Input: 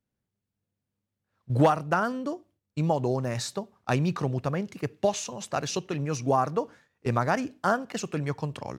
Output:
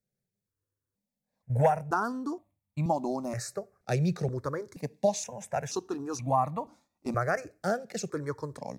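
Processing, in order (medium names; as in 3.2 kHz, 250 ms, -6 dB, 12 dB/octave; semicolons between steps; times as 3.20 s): peaking EQ 3 kHz -14.5 dB 0.31 oct; stepped phaser 2.1 Hz 280–1500 Hz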